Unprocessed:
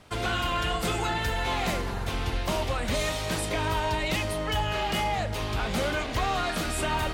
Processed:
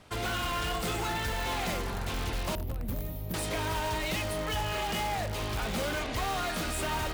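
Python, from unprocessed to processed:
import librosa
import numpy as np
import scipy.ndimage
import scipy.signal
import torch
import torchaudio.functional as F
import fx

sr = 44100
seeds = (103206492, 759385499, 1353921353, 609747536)

p1 = fx.curve_eq(x, sr, hz=(200.0, 1400.0, 8400.0, 14000.0), db=(0, -22, -24, 11), at=(2.55, 3.34))
p2 = (np.mod(10.0 ** (24.5 / 20.0) * p1 + 1.0, 2.0) - 1.0) / 10.0 ** (24.5 / 20.0)
p3 = p1 + (p2 * 10.0 ** (-7.0 / 20.0))
y = p3 * 10.0 ** (-5.0 / 20.0)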